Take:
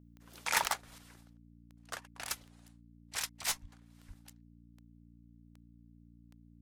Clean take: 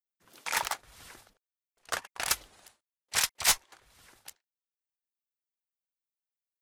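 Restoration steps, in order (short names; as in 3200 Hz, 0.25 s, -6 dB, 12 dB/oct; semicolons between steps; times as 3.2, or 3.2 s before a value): de-click; de-hum 58 Hz, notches 5; 0.98 gain correction +10 dB; 3.61–3.73 HPF 140 Hz 24 dB/oct; 4.07–4.19 HPF 140 Hz 24 dB/oct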